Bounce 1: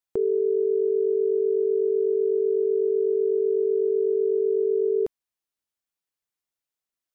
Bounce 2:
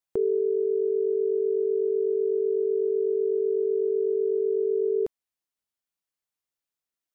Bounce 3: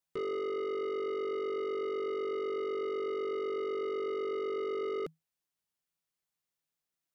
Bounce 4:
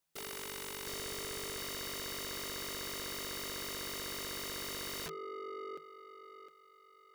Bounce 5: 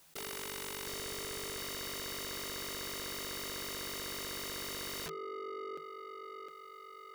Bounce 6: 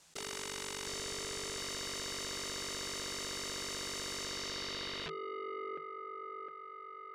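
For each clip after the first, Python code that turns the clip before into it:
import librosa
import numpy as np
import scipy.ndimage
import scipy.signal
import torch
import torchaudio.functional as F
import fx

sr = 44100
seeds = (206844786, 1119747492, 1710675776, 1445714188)

y1 = fx.rider(x, sr, range_db=10, speed_s=0.5)
y1 = y1 * librosa.db_to_amplitude(-2.0)
y2 = fx.peak_eq(y1, sr, hz=160.0, db=11.5, octaves=0.2)
y2 = 10.0 ** (-33.0 / 20.0) * np.tanh(y2 / 10.0 ** (-33.0 / 20.0))
y3 = fx.echo_thinned(y2, sr, ms=710, feedback_pct=48, hz=650.0, wet_db=-10.5)
y3 = (np.mod(10.0 ** (40.0 / 20.0) * y3 + 1.0, 2.0) - 1.0) / 10.0 ** (40.0 / 20.0)
y3 = y3 * librosa.db_to_amplitude(5.0)
y4 = fx.env_flatten(y3, sr, amount_pct=50)
y5 = fx.filter_sweep_lowpass(y4, sr, from_hz=7400.0, to_hz=1700.0, start_s=4.14, end_s=6.03, q=1.5)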